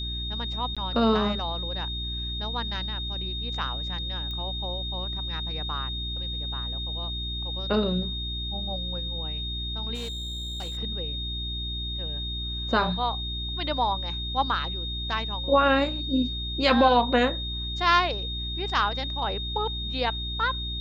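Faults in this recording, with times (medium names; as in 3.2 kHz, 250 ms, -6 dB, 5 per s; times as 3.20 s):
hum 60 Hz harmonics 6 -34 dBFS
whine 3.7 kHz -32 dBFS
0.75–0.77 s: dropout 16 ms
4.31 s: pop -24 dBFS
9.94–10.78 s: clipped -30 dBFS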